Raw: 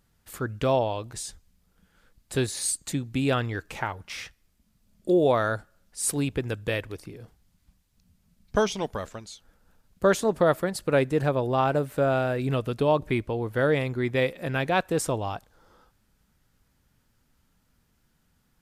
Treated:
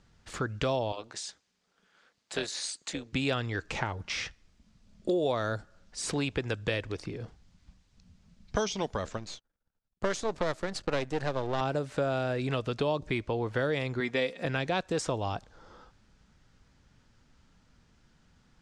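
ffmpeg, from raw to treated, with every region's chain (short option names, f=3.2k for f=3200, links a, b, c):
-filter_complex "[0:a]asettb=1/sr,asplit=3[a][b][c];[a]atrim=end=0.924[d];[b]atrim=start=0.92:end=3.13,asetpts=PTS-STARTPTS,afade=t=in:d=0.004:c=qsin,afade=t=out:st=2.206:d=0.004:c=qsin,highpass=190,tremolo=f=220:d=0.71,lowshelf=f=360:g=-11.5[e];[c]atrim=start=3.126[f];[d][e]acrossfade=d=0.004:c1=hsin:c2=qsin[g];[g][f]acrossfade=d=0.004:c1=qsin:c2=hsin,asettb=1/sr,asplit=3[h][i][j];[h]atrim=end=9.174[k];[i]atrim=start=9.17:end=11.61,asetpts=PTS-STARTPTS,afade=t=in:d=0.004:c=qsin,afade=t=out:st=2.436:d=0.004:c=qsin,aeval=exprs='if(lt(val(0),0),0.251*val(0),val(0))':c=same,agate=range=-25dB:threshold=-55dB:ratio=16:release=100:detection=peak[l];[j]atrim=start=11.606[m];[k][l]acrossfade=d=0.004:c1=hsin:c2=qsin[n];[n][m]acrossfade=d=0.004:c1=qsin:c2=hsin,asettb=1/sr,asplit=3[o][p][q];[o]atrim=end=14.004[r];[p]atrim=start=14:end=14.45,asetpts=PTS-STARTPTS,afade=t=in:d=0.004:c=qsin,afade=t=out:st=0.446:d=0.004:c=qsin,highpass=f=220:p=1,aecho=1:1:4.3:0.39,atrim=end_sample=19845[s];[q]atrim=start=14.446[t];[r][s]acrossfade=d=0.004:c1=hsin:c2=qsin[u];[u][t]acrossfade=d=0.004:c1=qsin:c2=hsin,lowpass=f=6.8k:w=0.5412,lowpass=f=6.8k:w=1.3066,acrossover=split=520|4200[v][w][x];[v]acompressor=threshold=-38dB:ratio=4[y];[w]acompressor=threshold=-38dB:ratio=4[z];[x]acompressor=threshold=-42dB:ratio=4[aa];[y][z][aa]amix=inputs=3:normalize=0,volume=5dB"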